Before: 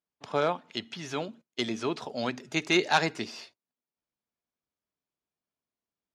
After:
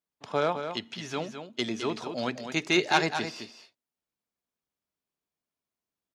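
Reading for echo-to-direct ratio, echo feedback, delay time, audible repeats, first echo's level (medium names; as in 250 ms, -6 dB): -8.5 dB, no regular repeats, 211 ms, 1, -8.5 dB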